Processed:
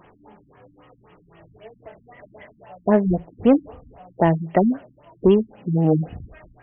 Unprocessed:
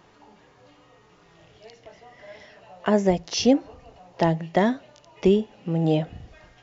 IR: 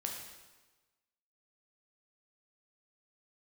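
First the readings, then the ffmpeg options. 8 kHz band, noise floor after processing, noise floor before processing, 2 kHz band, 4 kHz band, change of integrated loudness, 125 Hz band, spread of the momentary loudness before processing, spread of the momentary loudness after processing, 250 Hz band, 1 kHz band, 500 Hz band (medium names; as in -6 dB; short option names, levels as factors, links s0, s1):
no reading, -57 dBFS, -56 dBFS, -2.0 dB, under -10 dB, +3.0 dB, +4.0 dB, 7 LU, 7 LU, +3.5 dB, +2.0 dB, +2.5 dB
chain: -af "acontrast=83,afftfilt=real='re*lt(b*sr/1024,280*pow(3400/280,0.5+0.5*sin(2*PI*3.8*pts/sr)))':imag='im*lt(b*sr/1024,280*pow(3400/280,0.5+0.5*sin(2*PI*3.8*pts/sr)))':win_size=1024:overlap=0.75,volume=0.75"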